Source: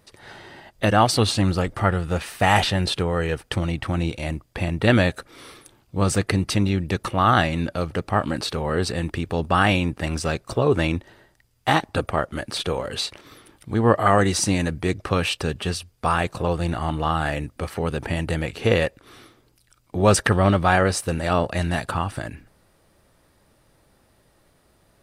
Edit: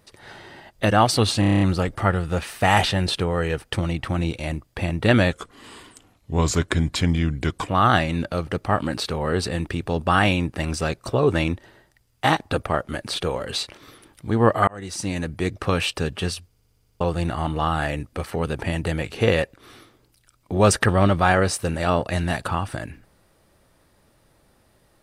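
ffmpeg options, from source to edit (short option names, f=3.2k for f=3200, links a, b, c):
-filter_complex "[0:a]asplit=20[a][b][c][d][e][f][g][h][i][j][k][l][m][n][o][p][q][r][s][t];[a]atrim=end=1.432[u];[b]atrim=start=1.398:end=1.432[v];[c]atrim=start=1.398:end=1.432[w];[d]atrim=start=1.398:end=1.432[x];[e]atrim=start=1.398:end=1.432[y];[f]atrim=start=1.398:end=1.432[z];[g]atrim=start=1.398:end=1.432[aa];[h]atrim=start=1.398:end=5.114[ab];[i]atrim=start=5.11:end=7.12,asetpts=PTS-STARTPTS,asetrate=37485,aresample=44100[ac];[j]atrim=start=7.116:end=14.11,asetpts=PTS-STARTPTS,afade=t=out:st=6.99:d=0.004:c=hsin[ad];[k]atrim=start=14.11:end=15.962,asetpts=PTS-STARTPTS,afade=t=in:d=1.16:c=qsin[ae];[l]atrim=start=15.898:end=15.962[af];[m]atrim=start=15.898:end=15.962[ag];[n]atrim=start=15.898:end=15.962[ah];[o]atrim=start=15.898:end=15.962[ai];[p]atrim=start=15.898:end=15.962[aj];[q]atrim=start=15.898:end=15.962[ak];[r]atrim=start=15.898:end=15.962[al];[s]atrim=start=15.898:end=15.962[am];[t]atrim=start=16.438[an];[u][v]acrossfade=d=0.004:c1=hsin:c2=hsin[ao];[ao][w]acrossfade=d=0.004:c1=hsin:c2=hsin[ap];[ap][x]acrossfade=d=0.004:c1=hsin:c2=hsin[aq];[aq][y]acrossfade=d=0.004:c1=hsin:c2=hsin[ar];[ar][z]acrossfade=d=0.004:c1=hsin:c2=hsin[as];[as][aa]acrossfade=d=0.004:c1=hsin:c2=hsin[at];[at][ab]acrossfade=d=0.004:c1=hsin:c2=hsin[au];[au][ac]acrossfade=d=0.004:c1=hsin:c2=hsin[av];[ad][ae]concat=n=2:v=0:a=1[aw];[av][aw]acrossfade=d=0.004:c1=hsin:c2=hsin[ax];[ax][af]acrossfade=d=0.004:c1=hsin:c2=hsin[ay];[ay][ag]acrossfade=d=0.004:c1=hsin:c2=hsin[az];[az][ah]acrossfade=d=0.004:c1=hsin:c2=hsin[ba];[ba][ai]acrossfade=d=0.004:c1=hsin:c2=hsin[bb];[bb][aj]acrossfade=d=0.004:c1=hsin:c2=hsin[bc];[bc][ak]acrossfade=d=0.004:c1=hsin:c2=hsin[bd];[bd][al]acrossfade=d=0.004:c1=hsin:c2=hsin[be];[be][am]acrossfade=d=0.004:c1=hsin:c2=hsin[bf];[bf][an]acrossfade=d=0.004:c1=hsin:c2=hsin"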